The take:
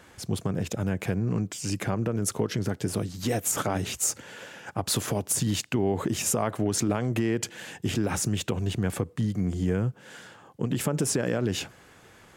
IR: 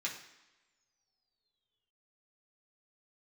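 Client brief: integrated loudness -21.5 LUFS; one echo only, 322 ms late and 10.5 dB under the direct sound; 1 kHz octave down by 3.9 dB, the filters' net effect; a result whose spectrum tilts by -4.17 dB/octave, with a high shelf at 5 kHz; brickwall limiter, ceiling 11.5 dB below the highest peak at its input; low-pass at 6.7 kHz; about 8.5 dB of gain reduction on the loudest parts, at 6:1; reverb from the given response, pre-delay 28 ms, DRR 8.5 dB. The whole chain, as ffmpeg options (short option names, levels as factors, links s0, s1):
-filter_complex "[0:a]lowpass=6700,equalizer=f=1000:t=o:g=-6,highshelf=f=5000:g=8.5,acompressor=threshold=0.0282:ratio=6,alimiter=level_in=1.58:limit=0.0631:level=0:latency=1,volume=0.631,aecho=1:1:322:0.299,asplit=2[s0][s1];[1:a]atrim=start_sample=2205,adelay=28[s2];[s1][s2]afir=irnorm=-1:irlink=0,volume=0.282[s3];[s0][s3]amix=inputs=2:normalize=0,volume=6.31"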